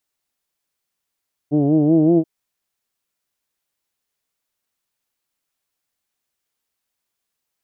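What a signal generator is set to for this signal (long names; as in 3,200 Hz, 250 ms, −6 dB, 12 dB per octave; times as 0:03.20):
vowel from formants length 0.73 s, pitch 142 Hz, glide +3 semitones, F1 330 Hz, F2 670 Hz, F3 3,000 Hz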